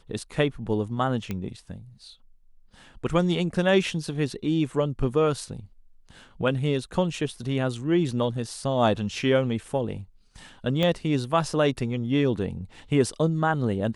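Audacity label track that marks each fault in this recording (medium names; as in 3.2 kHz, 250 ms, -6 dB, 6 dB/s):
1.310000	1.310000	pop -17 dBFS
10.830000	10.830000	pop -13 dBFS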